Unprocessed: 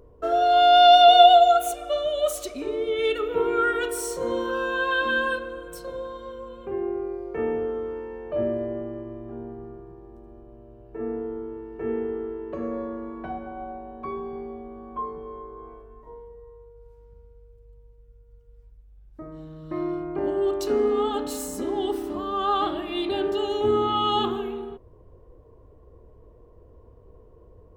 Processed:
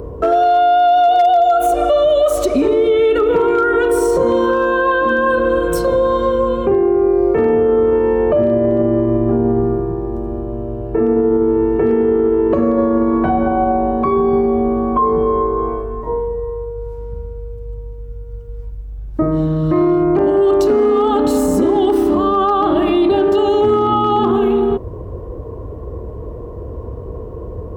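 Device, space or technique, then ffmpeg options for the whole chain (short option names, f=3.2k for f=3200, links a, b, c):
mastering chain: -filter_complex "[0:a]highpass=47,equalizer=f=1.1k:t=o:w=0.68:g=2.5,acrossover=split=740|1600[a][b][c];[a]acompressor=threshold=-26dB:ratio=4[d];[b]acompressor=threshold=-24dB:ratio=4[e];[c]acompressor=threshold=-42dB:ratio=4[f];[d][e][f]amix=inputs=3:normalize=0,acompressor=threshold=-30dB:ratio=2,tiltshelf=f=850:g=4.5,asoftclip=type=hard:threshold=-21dB,alimiter=level_in=27dB:limit=-1dB:release=50:level=0:latency=1,volume=-6dB"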